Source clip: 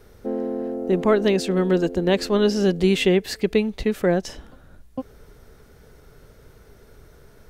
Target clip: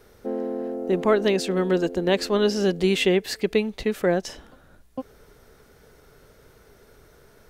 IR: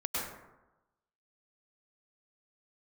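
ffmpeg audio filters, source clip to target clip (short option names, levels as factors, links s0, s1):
-af "lowshelf=f=200:g=-8"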